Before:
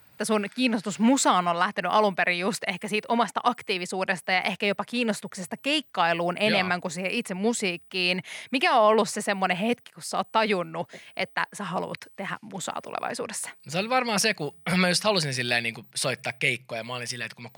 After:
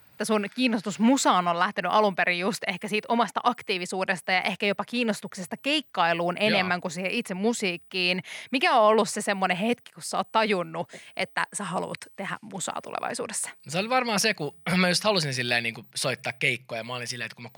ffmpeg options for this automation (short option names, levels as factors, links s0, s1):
-af "asetnsamples=n=441:p=0,asendcmd='3.79 equalizer g 0.5;4.66 equalizer g -5.5;8.64 equalizer g 2;10.89 equalizer g 14;12.14 equalizer g 6;13.93 equalizer g -4',equalizer=f=8400:t=o:w=0.28:g=-6"